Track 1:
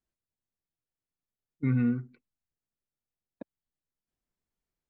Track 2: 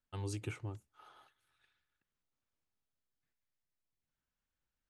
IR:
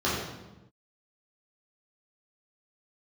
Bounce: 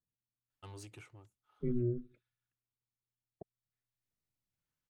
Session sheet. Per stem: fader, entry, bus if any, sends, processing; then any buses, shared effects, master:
-4.0 dB, 0.00 s, no send, resonances exaggerated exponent 2; ring modulator 120 Hz
-1.5 dB, 0.50 s, no send, bass shelf 430 Hz -6 dB; band-stop 1.6 kHz, Q 25; saturation -39 dBFS, distortion -16 dB; auto duck -12 dB, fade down 1.00 s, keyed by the first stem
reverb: none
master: none

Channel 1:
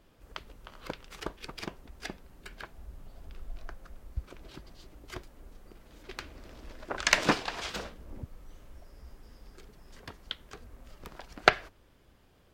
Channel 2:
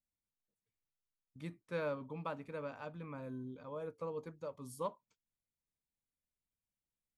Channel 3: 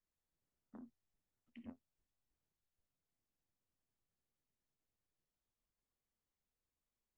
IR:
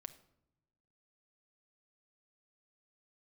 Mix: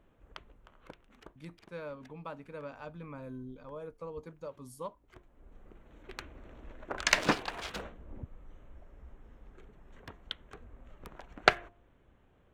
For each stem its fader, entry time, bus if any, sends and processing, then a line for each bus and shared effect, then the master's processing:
-2.0 dB, 0.00 s, no send, local Wiener filter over 9 samples; de-hum 348.5 Hz, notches 3; auto duck -17 dB, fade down 1.65 s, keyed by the second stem
-1.0 dB, 0.00 s, no send, gain riding 0.5 s
-12.0 dB, 0.35 s, no send, none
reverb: none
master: none

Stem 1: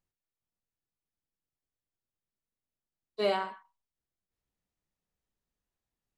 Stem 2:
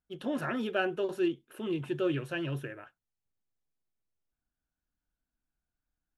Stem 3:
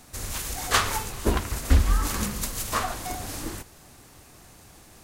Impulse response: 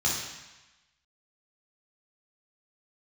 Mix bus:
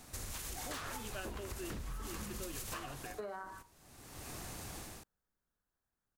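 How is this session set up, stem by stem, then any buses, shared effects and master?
-0.5 dB, 0.00 s, bus A, no send, resonant high shelf 2 kHz -9 dB, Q 3
-6.5 dB, 0.40 s, no bus, no send, tilt EQ +2 dB/octave
-4.5 dB, 0.00 s, bus A, no send, level rider gain up to 10 dB; auto duck -23 dB, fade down 0.45 s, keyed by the first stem
bus A: 0.0 dB, wavefolder -16 dBFS; compression, threshold -33 dBFS, peak gain reduction 13.5 dB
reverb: none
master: compression 4:1, threshold -41 dBFS, peak gain reduction 10 dB

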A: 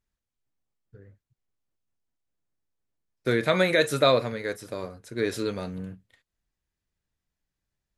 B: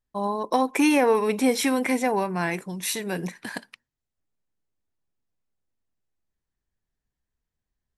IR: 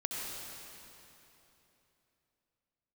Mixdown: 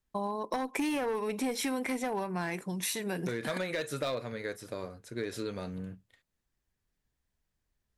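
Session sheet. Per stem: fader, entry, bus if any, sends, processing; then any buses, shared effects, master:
-3.5 dB, 0.00 s, no send, overload inside the chain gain 15 dB
+1.0 dB, 0.00 s, no send, one-sided clip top -18.5 dBFS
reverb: none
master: compression 4:1, threshold -32 dBFS, peak gain reduction 13 dB

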